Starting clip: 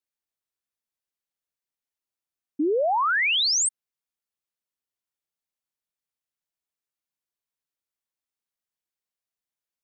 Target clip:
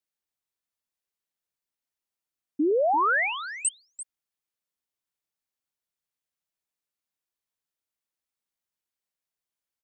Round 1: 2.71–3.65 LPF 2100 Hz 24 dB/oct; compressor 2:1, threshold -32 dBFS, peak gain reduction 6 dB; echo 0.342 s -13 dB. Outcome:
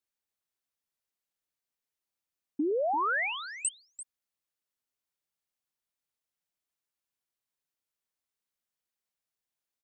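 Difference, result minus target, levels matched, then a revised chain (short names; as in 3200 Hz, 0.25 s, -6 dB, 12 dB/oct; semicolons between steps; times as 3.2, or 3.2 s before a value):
compressor: peak gain reduction +6 dB
2.71–3.65 LPF 2100 Hz 24 dB/oct; echo 0.342 s -13 dB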